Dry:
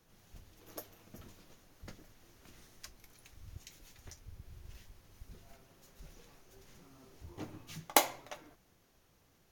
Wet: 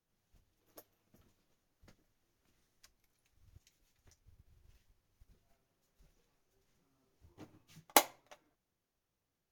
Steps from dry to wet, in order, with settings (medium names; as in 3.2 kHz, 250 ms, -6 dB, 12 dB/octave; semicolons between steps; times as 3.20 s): upward expansion 1.5:1, over -57 dBFS